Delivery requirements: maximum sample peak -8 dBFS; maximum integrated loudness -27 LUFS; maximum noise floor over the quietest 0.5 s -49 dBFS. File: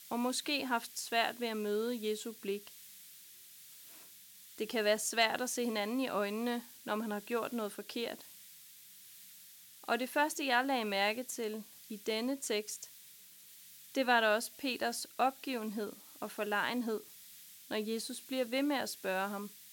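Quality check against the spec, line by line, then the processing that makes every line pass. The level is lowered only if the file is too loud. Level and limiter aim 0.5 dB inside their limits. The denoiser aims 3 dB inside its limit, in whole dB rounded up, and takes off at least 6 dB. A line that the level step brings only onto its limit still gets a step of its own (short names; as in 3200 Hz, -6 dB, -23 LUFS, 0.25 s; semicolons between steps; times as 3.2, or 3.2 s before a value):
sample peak -15.5 dBFS: OK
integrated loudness -35.5 LUFS: OK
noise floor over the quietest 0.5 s -57 dBFS: OK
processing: none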